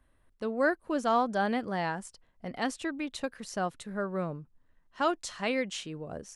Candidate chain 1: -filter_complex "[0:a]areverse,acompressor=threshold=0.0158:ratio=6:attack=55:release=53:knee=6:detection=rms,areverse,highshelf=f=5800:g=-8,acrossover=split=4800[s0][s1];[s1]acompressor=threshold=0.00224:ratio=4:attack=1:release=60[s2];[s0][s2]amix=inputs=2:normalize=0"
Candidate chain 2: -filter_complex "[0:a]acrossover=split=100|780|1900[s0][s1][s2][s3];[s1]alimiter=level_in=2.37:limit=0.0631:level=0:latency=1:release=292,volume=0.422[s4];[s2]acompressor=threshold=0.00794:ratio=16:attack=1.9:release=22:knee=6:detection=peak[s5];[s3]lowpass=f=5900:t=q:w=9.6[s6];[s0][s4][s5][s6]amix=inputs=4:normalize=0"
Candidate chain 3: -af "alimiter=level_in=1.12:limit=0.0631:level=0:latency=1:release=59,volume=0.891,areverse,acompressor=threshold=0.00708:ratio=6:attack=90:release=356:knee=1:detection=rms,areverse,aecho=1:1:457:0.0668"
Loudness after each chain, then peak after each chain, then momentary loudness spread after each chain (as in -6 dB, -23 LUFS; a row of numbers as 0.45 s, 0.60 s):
-38.5 LUFS, -34.5 LUFS, -45.0 LUFS; -24.0 dBFS, -14.5 dBFS, -30.0 dBFS; 7 LU, 12 LU, 6 LU